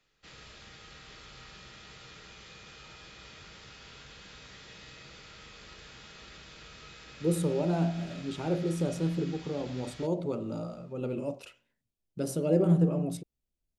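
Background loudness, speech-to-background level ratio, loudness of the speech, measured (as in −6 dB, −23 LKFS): −48.5 LKFS, 17.5 dB, −31.0 LKFS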